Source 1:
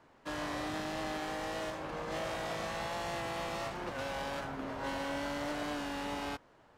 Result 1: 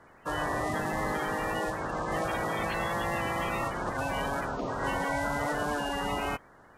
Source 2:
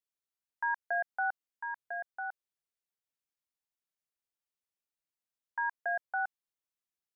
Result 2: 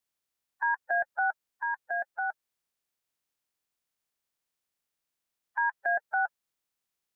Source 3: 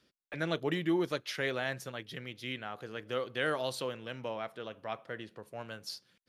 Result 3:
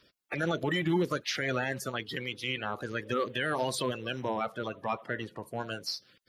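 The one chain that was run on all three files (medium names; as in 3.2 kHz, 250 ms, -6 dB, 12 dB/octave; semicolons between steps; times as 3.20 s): coarse spectral quantiser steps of 30 dB; peak limiter -27.5 dBFS; trim +7.5 dB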